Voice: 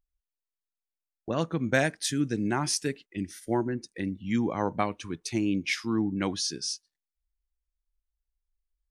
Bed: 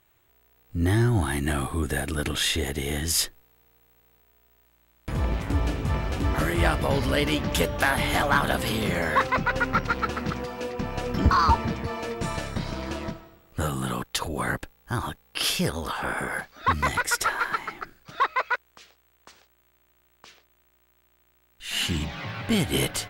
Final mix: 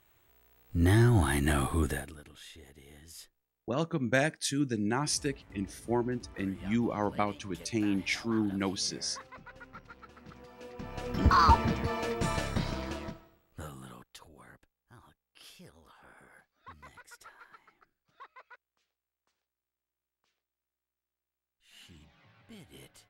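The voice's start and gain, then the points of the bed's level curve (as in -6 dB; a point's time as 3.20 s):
2.40 s, -2.5 dB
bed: 1.86 s -1.5 dB
2.24 s -25.5 dB
10.09 s -25.5 dB
11.41 s -1.5 dB
12.61 s -1.5 dB
14.51 s -28 dB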